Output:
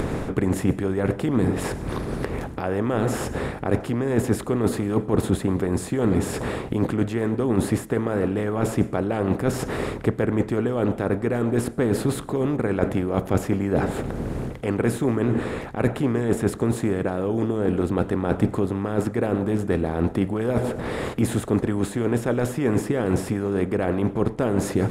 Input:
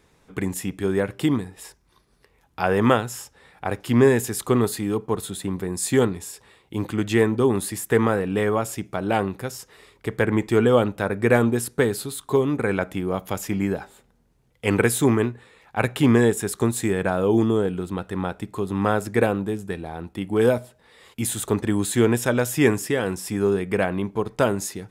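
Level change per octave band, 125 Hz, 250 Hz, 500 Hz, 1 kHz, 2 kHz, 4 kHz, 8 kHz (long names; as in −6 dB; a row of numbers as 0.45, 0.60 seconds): +1.5, +0.5, −2.0, −2.5, −5.0, −5.0, −7.0 decibels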